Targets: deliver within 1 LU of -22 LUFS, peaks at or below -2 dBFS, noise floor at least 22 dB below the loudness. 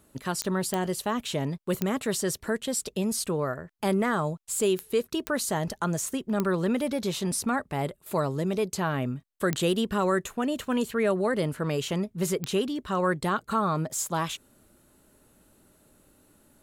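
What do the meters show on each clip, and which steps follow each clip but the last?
clicks 8; loudness -28.5 LUFS; peak -10.5 dBFS; loudness target -22.0 LUFS
-> de-click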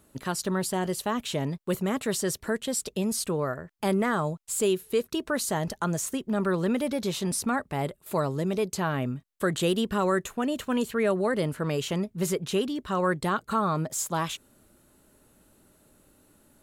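clicks 0; loudness -28.5 LUFS; peak -15.0 dBFS; loudness target -22.0 LUFS
-> gain +6.5 dB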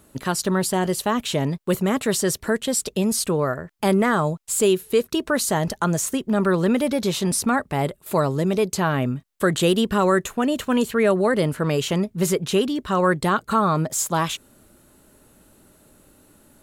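loudness -22.0 LUFS; peak -8.5 dBFS; noise floor -58 dBFS

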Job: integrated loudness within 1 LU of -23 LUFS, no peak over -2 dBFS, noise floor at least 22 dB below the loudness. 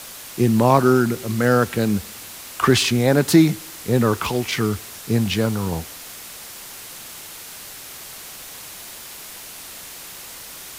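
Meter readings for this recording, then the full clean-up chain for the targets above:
noise floor -38 dBFS; noise floor target -41 dBFS; loudness -19.0 LUFS; peak -1.0 dBFS; loudness target -23.0 LUFS
-> denoiser 6 dB, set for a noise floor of -38 dBFS; gain -4 dB

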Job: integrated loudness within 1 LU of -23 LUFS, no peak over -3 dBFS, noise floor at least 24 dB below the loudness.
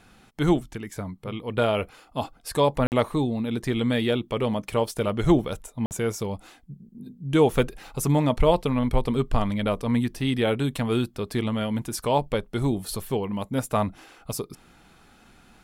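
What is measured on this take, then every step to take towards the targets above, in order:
dropouts 2; longest dropout 49 ms; loudness -25.5 LUFS; peak -7.0 dBFS; loudness target -23.0 LUFS
-> interpolate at 2.87/5.86, 49 ms; gain +2.5 dB

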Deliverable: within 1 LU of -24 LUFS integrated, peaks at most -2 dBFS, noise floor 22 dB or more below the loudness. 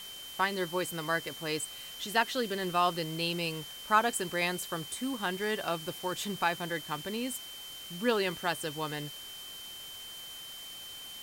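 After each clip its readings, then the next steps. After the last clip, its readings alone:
steady tone 3100 Hz; tone level -44 dBFS; noise floor -45 dBFS; noise floor target -55 dBFS; loudness -33.0 LUFS; peak -11.5 dBFS; loudness target -24.0 LUFS
-> notch 3100 Hz, Q 30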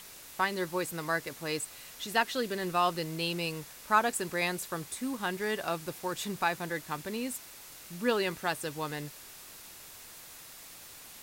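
steady tone none; noise floor -50 dBFS; noise floor target -55 dBFS
-> denoiser 6 dB, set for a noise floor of -50 dBFS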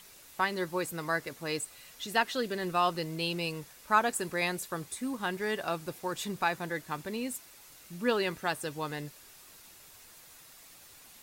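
noise floor -54 dBFS; noise floor target -55 dBFS
-> denoiser 6 dB, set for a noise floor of -54 dBFS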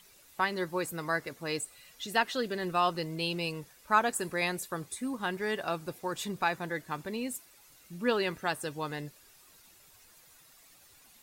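noise floor -59 dBFS; loudness -32.5 LUFS; peak -11.5 dBFS; loudness target -24.0 LUFS
-> gain +8.5 dB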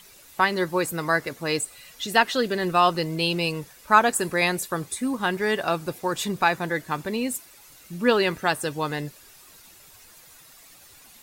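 loudness -24.0 LUFS; peak -3.0 dBFS; noise floor -51 dBFS

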